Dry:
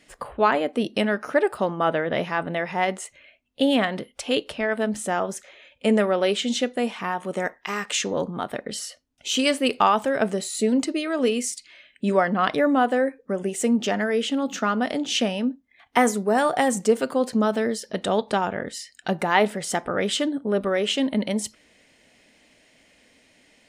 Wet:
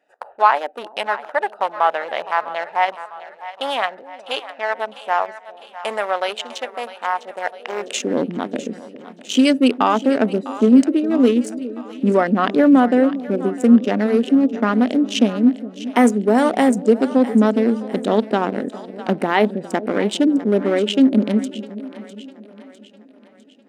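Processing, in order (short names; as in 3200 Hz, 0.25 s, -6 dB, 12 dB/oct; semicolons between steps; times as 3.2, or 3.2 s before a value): Wiener smoothing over 41 samples; in parallel at +1.5 dB: limiter -14 dBFS, peak gain reduction 9 dB; on the sum: split-band echo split 580 Hz, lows 0.41 s, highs 0.653 s, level -14.5 dB; high-pass sweep 860 Hz -> 250 Hz, 7.42–8.12; gain -2.5 dB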